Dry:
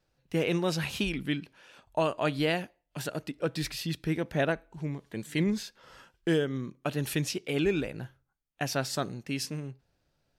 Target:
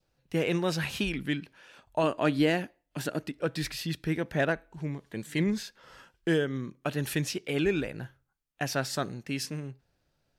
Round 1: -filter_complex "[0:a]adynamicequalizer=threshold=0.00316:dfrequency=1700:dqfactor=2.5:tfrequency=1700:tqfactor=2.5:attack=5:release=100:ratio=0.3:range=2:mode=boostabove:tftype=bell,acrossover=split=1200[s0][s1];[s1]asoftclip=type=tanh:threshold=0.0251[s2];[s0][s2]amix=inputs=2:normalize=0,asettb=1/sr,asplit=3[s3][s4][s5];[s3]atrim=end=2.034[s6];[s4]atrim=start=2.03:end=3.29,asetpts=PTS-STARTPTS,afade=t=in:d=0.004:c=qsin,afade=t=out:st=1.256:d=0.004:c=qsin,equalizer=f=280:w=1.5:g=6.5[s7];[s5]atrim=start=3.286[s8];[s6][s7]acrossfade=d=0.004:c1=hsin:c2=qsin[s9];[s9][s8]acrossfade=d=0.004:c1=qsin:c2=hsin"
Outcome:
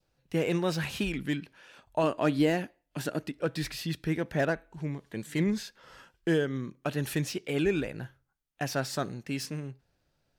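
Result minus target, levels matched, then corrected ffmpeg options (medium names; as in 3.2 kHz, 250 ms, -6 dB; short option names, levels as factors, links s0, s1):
saturation: distortion +10 dB
-filter_complex "[0:a]adynamicequalizer=threshold=0.00316:dfrequency=1700:dqfactor=2.5:tfrequency=1700:tqfactor=2.5:attack=5:release=100:ratio=0.3:range=2:mode=boostabove:tftype=bell,acrossover=split=1200[s0][s1];[s1]asoftclip=type=tanh:threshold=0.0794[s2];[s0][s2]amix=inputs=2:normalize=0,asettb=1/sr,asplit=3[s3][s4][s5];[s3]atrim=end=2.034[s6];[s4]atrim=start=2.03:end=3.29,asetpts=PTS-STARTPTS,afade=t=in:d=0.004:c=qsin,afade=t=out:st=1.256:d=0.004:c=qsin,equalizer=f=280:w=1.5:g=6.5[s7];[s5]atrim=start=3.286[s8];[s6][s7]acrossfade=d=0.004:c1=hsin:c2=qsin[s9];[s9][s8]acrossfade=d=0.004:c1=qsin:c2=hsin"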